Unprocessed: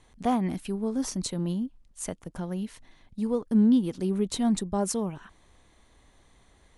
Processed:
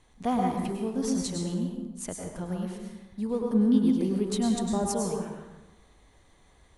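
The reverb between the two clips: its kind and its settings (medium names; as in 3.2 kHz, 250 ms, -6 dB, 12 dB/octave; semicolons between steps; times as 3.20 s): plate-style reverb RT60 1.1 s, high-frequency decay 0.6×, pre-delay 90 ms, DRR 0.5 dB; trim -2.5 dB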